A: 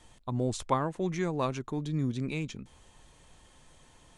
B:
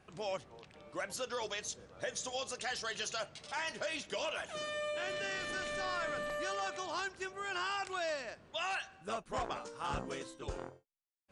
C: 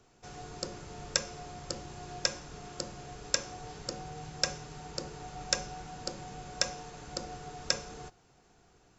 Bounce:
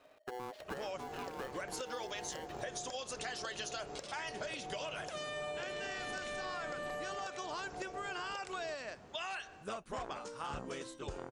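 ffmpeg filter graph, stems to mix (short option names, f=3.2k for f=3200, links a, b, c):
-filter_complex "[0:a]lowpass=f=2.6k:w=0.5412,lowpass=f=2.6k:w=1.3066,tiltshelf=f=1.1k:g=-9.5,aeval=exprs='val(0)*sgn(sin(2*PI*620*n/s))':c=same,volume=-10dB[a];[1:a]adelay=600,volume=2dB[b];[2:a]acompressor=threshold=-42dB:ratio=6,adelay=650,volume=-4.5dB[c];[a][c]amix=inputs=2:normalize=0,equalizer=f=550:w=0.5:g=13,acompressor=threshold=-40dB:ratio=2.5,volume=0dB[d];[b][d]amix=inputs=2:normalize=0,acompressor=threshold=-38dB:ratio=6"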